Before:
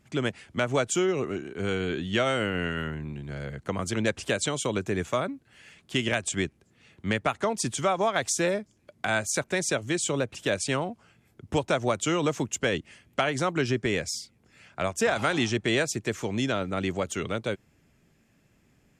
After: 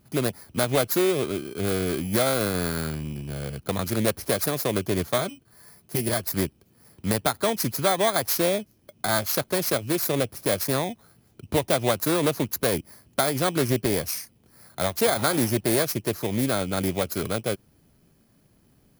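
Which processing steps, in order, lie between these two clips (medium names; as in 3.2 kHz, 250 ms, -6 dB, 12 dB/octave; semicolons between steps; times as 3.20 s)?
bit-reversed sample order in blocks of 16 samples; 5.18–6.31 s: comb of notches 270 Hz; loudspeaker Doppler distortion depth 0.32 ms; trim +3.5 dB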